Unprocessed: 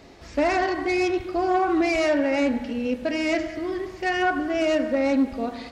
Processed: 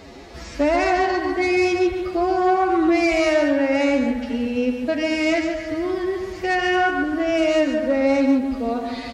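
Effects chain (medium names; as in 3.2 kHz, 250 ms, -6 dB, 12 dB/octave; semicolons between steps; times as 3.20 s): in parallel at +2 dB: compression, threshold -32 dBFS, peak gain reduction 14 dB; on the sum: time stretch by phase-locked vocoder 1.6×; delay 144 ms -7 dB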